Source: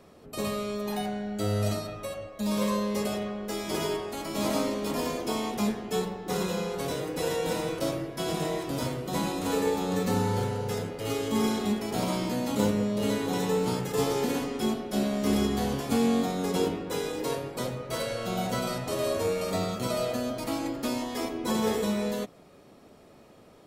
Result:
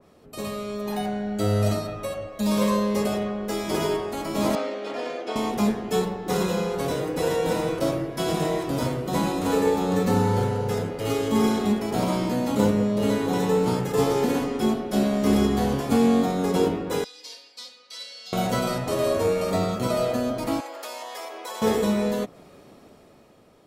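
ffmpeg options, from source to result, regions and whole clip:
ffmpeg -i in.wav -filter_complex "[0:a]asettb=1/sr,asplit=3[link_01][link_02][link_03];[link_01]atrim=end=4.554[link_04];[link_02]atrim=start=4.55:end=5.36,asetpts=PTS-STARTPTS,afade=type=in:duration=0.004:curve=qsin,afade=type=out:start_time=0.806:duration=0.004:curve=qsin,highpass=510,lowpass=3600,equalizer=frequency=1000:width=6.1:gain=-13.5[link_05];[link_03]atrim=start=5.356[link_06];[link_04][link_05]acrossfade=duration=0.004:curve1=hsin:curve2=qsin[link_07];[link_07][link_06]acrossfade=duration=0.004:curve1=qsin:curve2=hsin,asettb=1/sr,asplit=3[link_08][link_09][link_10];[link_08]atrim=end=17.044[link_11];[link_09]atrim=start=17.04:end=18.33,asetpts=PTS-STARTPTS,afade=type=in:duration=0.004:curve=qsin,afade=type=out:start_time=1.286:duration=0.004:curve=qsin,bandpass=frequency=4600:width_type=q:width=4.3,aecho=1:1:4:0.96,atrim=end_sample=56889[link_12];[link_10]atrim=start=18.326[link_13];[link_11][link_12]acrossfade=duration=0.004:curve1=hsin:curve2=qsin[link_14];[link_14][link_13]acrossfade=duration=0.004:curve1=qsin:curve2=hsin,asettb=1/sr,asplit=3[link_15][link_16][link_17];[link_15]atrim=end=20.604[link_18];[link_16]atrim=start=20.6:end=21.62,asetpts=PTS-STARTPTS,afade=type=in:duration=0.004:curve=qsin,afade=type=out:start_time=1.016:duration=0.004:curve=qsin,highpass=frequency=550:width=0.5412,highpass=frequency=550:width=1.3066,acompressor=threshold=-38dB:ratio=3:attack=3.2:release=140:knee=1:detection=peak[link_19];[link_17]atrim=start=21.616[link_20];[link_18][link_19]acrossfade=duration=0.004:curve1=hsin:curve2=qsin[link_21];[link_21][link_20]acrossfade=duration=0.004:curve1=qsin:curve2=hsin,dynaudnorm=framelen=160:gausssize=11:maxgain=7dB,adynamicequalizer=threshold=0.0112:dfrequency=2000:dqfactor=0.7:tfrequency=2000:tqfactor=0.7:attack=5:release=100:ratio=0.375:range=2.5:mode=cutabove:tftype=highshelf,volume=-1.5dB" out.wav

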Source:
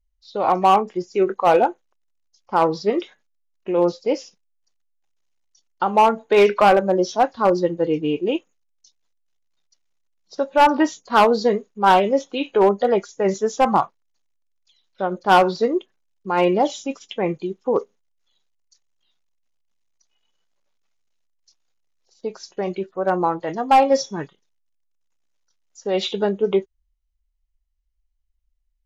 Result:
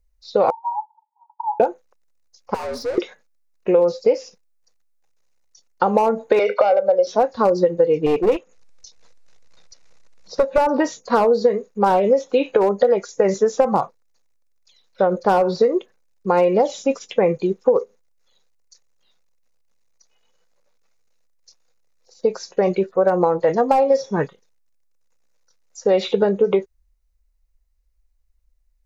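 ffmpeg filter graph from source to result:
ffmpeg -i in.wav -filter_complex "[0:a]asettb=1/sr,asplit=3[link_01][link_02][link_03];[link_01]atrim=end=0.504[link_04];[link_02]atrim=start=0.5:end=1.6,asetpts=PTS-STARTPTS,afade=type=in:duration=0.004:curve=qsin,afade=type=out:start_time=1.096:duration=0.004:curve=qsin,acompressor=threshold=-18dB:ratio=6:attack=3.2:release=140:knee=1:detection=peak,asuperpass=centerf=900:order=8:qfactor=6.9[link_05];[link_03]atrim=start=1.596[link_06];[link_04][link_05]acrossfade=duration=0.004:curve1=hsin:curve2=qsin[link_07];[link_07][link_06]acrossfade=duration=0.004:curve1=qsin:curve2=hsin,asettb=1/sr,asplit=3[link_08][link_09][link_10];[link_08]atrim=end=2.544[link_11];[link_09]atrim=start=2.54:end=2.98,asetpts=PTS-STARTPTS,afade=type=in:duration=0.004:curve=qsin,afade=type=out:start_time=0.436:duration=0.004:curve=qsin,acompressor=threshold=-21dB:ratio=5:attack=3.2:release=140:knee=1:detection=peak,afreqshift=81,aeval=exprs='(tanh(63.1*val(0)+0.25)-tanh(0.25))/63.1':channel_layout=same[link_12];[link_10]atrim=start=2.976[link_13];[link_11][link_12]acrossfade=duration=0.004:curve1=hsin:curve2=qsin[link_14];[link_14][link_13]acrossfade=duration=0.004:curve1=qsin:curve2=hsin,asettb=1/sr,asplit=3[link_15][link_16][link_17];[link_15]atrim=end=6.394[link_18];[link_16]atrim=start=6.39:end=7.07,asetpts=PTS-STARTPTS,afade=type=in:duration=0.004:curve=qsin,afade=type=out:start_time=0.676:duration=0.004:curve=qsin,highpass=frequency=320:width=0.5412,highpass=frequency=320:width=1.3066,equalizer=frequency=500:width_type=q:width=4:gain=4,equalizer=frequency=900:width_type=q:width=4:gain=-5,equalizer=frequency=1600:width_type=q:width=4:gain=-6,lowpass=frequency=4800:width=0.5412,lowpass=frequency=4800:width=1.3066,aecho=1:1:1.4:0.72,atrim=end_sample=29988[link_19];[link_17]atrim=start=7.066[link_20];[link_18][link_19]acrossfade=duration=0.004:curve1=hsin:curve2=qsin[link_21];[link_21][link_20]acrossfade=duration=0.004:curve1=qsin:curve2=hsin,asettb=1/sr,asplit=3[link_22][link_23][link_24];[link_22]atrim=end=8.064[link_25];[link_23]atrim=start=8.06:end=10.58,asetpts=PTS-STARTPTS,afade=type=in:duration=0.004:curve=qsin,afade=type=out:start_time=2.516:duration=0.004:curve=qsin,lowpass=6600,aeval=exprs='clip(val(0),-1,0.0668)':channel_layout=same,acompressor=mode=upward:threshold=-40dB:ratio=2.5:attack=3.2:release=140:knee=2.83:detection=peak[link_26];[link_24]atrim=start=10.576[link_27];[link_25][link_26]acrossfade=duration=0.004:curve1=hsin:curve2=qsin[link_28];[link_28][link_27]acrossfade=duration=0.004:curve1=qsin:curve2=hsin,acrossover=split=820|3300[link_29][link_30][link_31];[link_29]acompressor=threshold=-19dB:ratio=4[link_32];[link_30]acompressor=threshold=-29dB:ratio=4[link_33];[link_31]acompressor=threshold=-42dB:ratio=4[link_34];[link_32][link_33][link_34]amix=inputs=3:normalize=0,equalizer=frequency=315:width_type=o:width=0.33:gain=-5,equalizer=frequency=500:width_type=o:width=0.33:gain=10,equalizer=frequency=3150:width_type=o:width=0.33:gain=-9,acompressor=threshold=-20dB:ratio=6,volume=7.5dB" out.wav

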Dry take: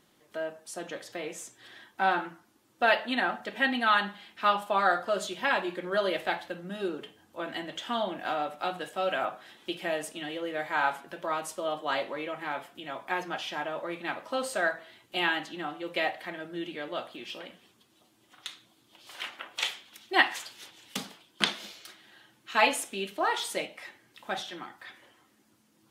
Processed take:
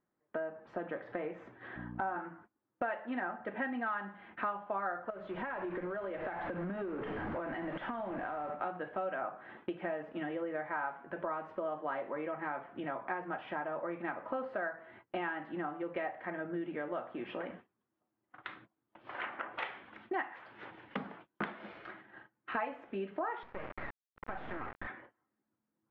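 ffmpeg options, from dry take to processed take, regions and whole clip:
ffmpeg -i in.wav -filter_complex "[0:a]asettb=1/sr,asplit=3[link_01][link_02][link_03];[link_01]atrim=end=1.764[link_04];[link_02]atrim=start=1.76:end=2.16,asetpts=PTS-STARTPTS,afade=type=in:duration=0.004:curve=qsin,afade=type=out:start_time=0.396:duration=0.004:curve=qsin,equalizer=frequency=2100:width=2:gain=-7,aeval=exprs='val(0)+0.00708*(sin(2*PI*60*n/s)+sin(2*PI*2*60*n/s)/2+sin(2*PI*3*60*n/s)/3+sin(2*PI*4*60*n/s)/4+sin(2*PI*5*60*n/s)/5)':channel_layout=same,highpass=170,lowpass=3100[link_05];[link_03]atrim=start=2.156[link_06];[link_04][link_05]acrossfade=duration=0.004:curve1=hsin:curve2=qsin[link_07];[link_07][link_06]acrossfade=duration=0.004:curve1=qsin:curve2=hsin,asettb=1/sr,asplit=3[link_08][link_09][link_10];[link_08]atrim=end=5.104[link_11];[link_09]atrim=start=5.1:end=8.5,asetpts=PTS-STARTPTS,afade=type=in:duration=0.004:curve=qsin,afade=type=out:start_time=3.396:duration=0.004:curve=qsin,aeval=exprs='val(0)+0.5*0.0106*sgn(val(0))':channel_layout=same,acompressor=threshold=-39dB:ratio=6:attack=3.2:release=140:knee=1:detection=peak,acrusher=bits=9:dc=4:mix=0:aa=0.000001[link_12];[link_10]atrim=start=8.496[link_13];[link_11][link_12]acrossfade=duration=0.004:curve1=hsin:curve2=qsin[link_14];[link_14][link_13]acrossfade=duration=0.004:curve1=qsin:curve2=hsin,asettb=1/sr,asplit=3[link_15][link_16][link_17];[link_15]atrim=end=23.434[link_18];[link_16]atrim=start=23.43:end=24.87,asetpts=PTS-STARTPTS,afade=type=in:duration=0.004:curve=qsin,afade=type=out:start_time=1.436:duration=0.004:curve=qsin,acompressor=threshold=-38dB:ratio=6:attack=3.2:release=140:knee=1:detection=peak,asplit=2[link_19][link_20];[link_20]highpass=frequency=720:poles=1,volume=12dB,asoftclip=type=tanh:threshold=-25dB[link_21];[link_19][link_21]amix=inputs=2:normalize=0,lowpass=frequency=1900:poles=1,volume=-6dB,acrusher=bits=4:dc=4:mix=0:aa=0.000001[link_22];[link_17]atrim=start=24.866[link_23];[link_18][link_22]acrossfade=duration=0.004:curve1=hsin:curve2=qsin[link_24];[link_24][link_23]acrossfade=duration=0.004:curve1=qsin:curve2=hsin,agate=range=-26dB:threshold=-55dB:ratio=16:detection=peak,lowpass=frequency=1800:width=0.5412,lowpass=frequency=1800:width=1.3066,acompressor=threshold=-44dB:ratio=5,volume=8dB" out.wav

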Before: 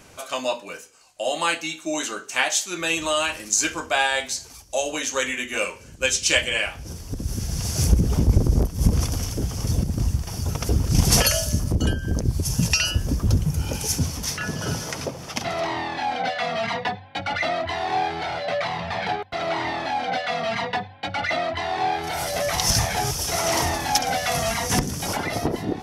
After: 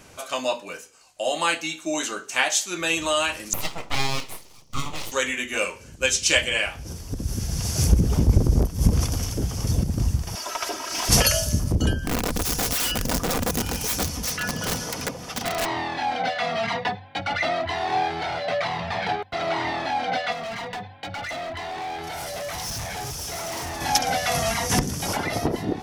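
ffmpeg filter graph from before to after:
ffmpeg -i in.wav -filter_complex "[0:a]asettb=1/sr,asplit=3[link_01][link_02][link_03];[link_01]atrim=end=3.534[link_04];[link_02]atrim=start=3.53:end=5.12,asetpts=PTS-STARTPTS,afade=type=in:duration=0.004:curve=qsin,afade=type=out:start_time=1.586:duration=0.004:curve=qsin,lowpass=4600,aeval=exprs='abs(val(0))':channel_layout=same,equalizer=frequency=1600:width_type=o:width=0.32:gain=-11.5[link_05];[link_03]atrim=start=5.116[link_06];[link_04][link_05]acrossfade=duration=0.004:curve1=hsin:curve2=qsin[link_07];[link_07][link_06]acrossfade=duration=0.004:curve1=qsin:curve2=hsin,asettb=1/sr,asplit=3[link_08][link_09][link_10];[link_08]atrim=end=10.354[link_11];[link_09]atrim=start=10.35:end=11.09,asetpts=PTS-STARTPTS,afade=type=in:duration=0.004:curve=qsin,afade=type=out:start_time=0.736:duration=0.004:curve=qsin,highpass=760,aecho=1:1:3.1:0.78,atrim=end_sample=32634,asplit=2[link_12][link_13];[link_13]highpass=frequency=720:poles=1,volume=17dB,asoftclip=type=tanh:threshold=-12dB[link_14];[link_12][link_14]amix=inputs=2:normalize=0,lowpass=frequency=2100:poles=1,volume=-6dB[link_15];[link_10]atrim=start=11.086[link_16];[link_11][link_15]acrossfade=duration=0.004:curve1=hsin:curve2=qsin[link_17];[link_17][link_16]acrossfade=duration=0.004:curve1=qsin:curve2=hsin,asettb=1/sr,asplit=3[link_18][link_19][link_20];[link_18]atrim=end=12.034[link_21];[link_19]atrim=start=12.03:end=15.66,asetpts=PTS-STARTPTS,afade=type=in:duration=0.004:curve=qsin,afade=type=out:start_time=3.626:duration=0.004:curve=qsin,aeval=exprs='(mod(9.44*val(0)+1,2)-1)/9.44':channel_layout=same,aecho=1:1:4.1:0.33,atrim=end_sample=160083[link_22];[link_20]atrim=start=15.656[link_23];[link_21][link_22]acrossfade=duration=0.004:curve1=hsin:curve2=qsin[link_24];[link_24][link_23]acrossfade=duration=0.004:curve1=qsin:curve2=hsin,asettb=1/sr,asplit=3[link_25][link_26][link_27];[link_25]atrim=end=20.324[link_28];[link_26]atrim=start=20.32:end=23.81,asetpts=PTS-STARTPTS,afade=type=in:duration=0.004:curve=qsin,afade=type=out:start_time=3.486:duration=0.004:curve=qsin,volume=24.5dB,asoftclip=hard,volume=-24.5dB,acompressor=threshold=-30dB:ratio=6:attack=3.2:release=140:knee=1:detection=peak[link_29];[link_27]atrim=start=23.806[link_30];[link_28][link_29]acrossfade=duration=0.004:curve1=hsin:curve2=qsin[link_31];[link_31][link_30]acrossfade=duration=0.004:curve1=qsin:curve2=hsin" out.wav

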